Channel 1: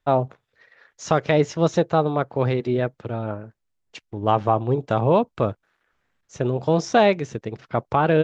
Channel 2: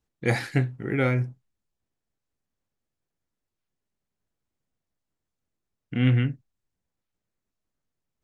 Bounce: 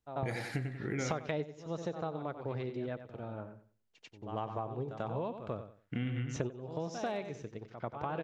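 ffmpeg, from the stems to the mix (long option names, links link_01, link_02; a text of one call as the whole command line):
ffmpeg -i stem1.wav -i stem2.wav -filter_complex "[0:a]asoftclip=type=hard:threshold=-6dB,volume=2dB,asplit=2[link_01][link_02];[link_02]volume=-16.5dB[link_03];[1:a]volume=-5dB,asplit=3[link_04][link_05][link_06];[link_05]volume=-6dB[link_07];[link_06]apad=whole_len=363090[link_08];[link_01][link_08]sidechaingate=range=-28dB:threshold=-53dB:ratio=16:detection=peak[link_09];[link_03][link_07]amix=inputs=2:normalize=0,aecho=0:1:92|184|276|368:1|0.24|0.0576|0.0138[link_10];[link_09][link_04][link_10]amix=inputs=3:normalize=0,acompressor=threshold=-32dB:ratio=10" out.wav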